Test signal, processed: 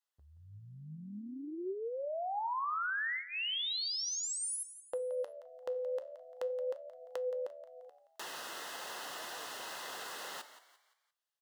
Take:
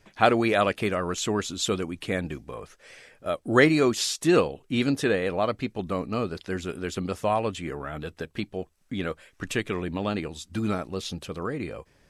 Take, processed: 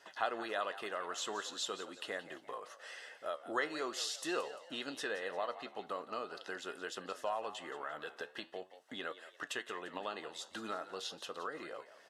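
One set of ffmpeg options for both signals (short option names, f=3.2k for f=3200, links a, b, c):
-filter_complex "[0:a]highpass=650,highshelf=f=6.5k:g=-9,acompressor=threshold=-52dB:ratio=2,flanger=delay=5.6:depth=9.3:regen=80:speed=0.43:shape=triangular,asuperstop=centerf=2300:order=4:qfactor=5.1,asplit=2[a][b];[b]asplit=4[c][d][e][f];[c]adelay=173,afreqshift=76,volume=-14dB[g];[d]adelay=346,afreqshift=152,volume=-22dB[h];[e]adelay=519,afreqshift=228,volume=-29.9dB[i];[f]adelay=692,afreqshift=304,volume=-37.9dB[j];[g][h][i][j]amix=inputs=4:normalize=0[k];[a][k]amix=inputs=2:normalize=0,volume=9.5dB"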